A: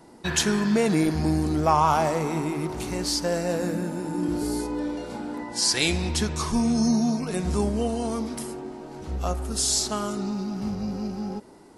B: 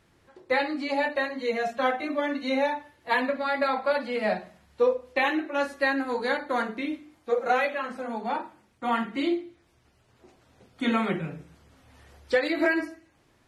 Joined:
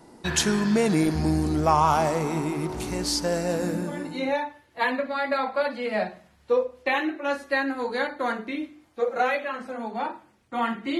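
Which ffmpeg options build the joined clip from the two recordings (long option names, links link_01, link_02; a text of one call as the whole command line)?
ffmpeg -i cue0.wav -i cue1.wav -filter_complex "[0:a]apad=whole_dur=10.99,atrim=end=10.99,atrim=end=4.37,asetpts=PTS-STARTPTS[link_01];[1:a]atrim=start=2.05:end=9.29,asetpts=PTS-STARTPTS[link_02];[link_01][link_02]acrossfade=duration=0.62:curve1=tri:curve2=tri" out.wav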